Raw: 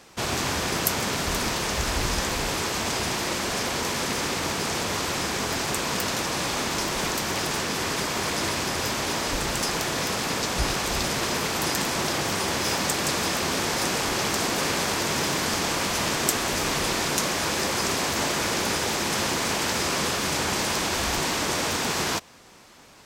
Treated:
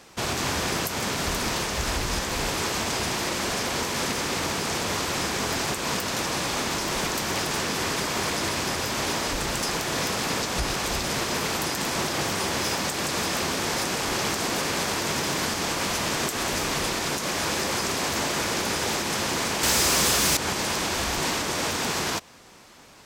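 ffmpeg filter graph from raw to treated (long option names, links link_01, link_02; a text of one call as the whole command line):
ffmpeg -i in.wav -filter_complex "[0:a]asettb=1/sr,asplit=3[link_01][link_02][link_03];[link_01]atrim=end=19.634[link_04];[link_02]atrim=start=19.63:end=20.37,asetpts=PTS-STARTPTS,afade=type=in:duration=0.004:curve=qsin,afade=type=out:start_time=0.736:duration=0.004:curve=qsin,aemphasis=mode=production:type=cd,aeval=exprs='val(0)+0.00891*(sin(2*PI*60*n/s)+sin(2*PI*2*60*n/s)/2+sin(2*PI*3*60*n/s)/3+sin(2*PI*4*60*n/s)/4+sin(2*PI*5*60*n/s)/5)':channel_layout=same,aeval=exprs='0.398*sin(PI/2*2.24*val(0)/0.398)':channel_layout=same[link_05];[link_03]atrim=start=20.366[link_06];[link_04][link_05]acrossfade=duration=0.004:curve1=hsin:curve2=qsin[link_07];[link_07][link_06]acrossfade=duration=0.004:curve1=qsin:curve2=hsin,acontrast=41,alimiter=limit=-11.5dB:level=0:latency=1:release=132,volume=-5dB" out.wav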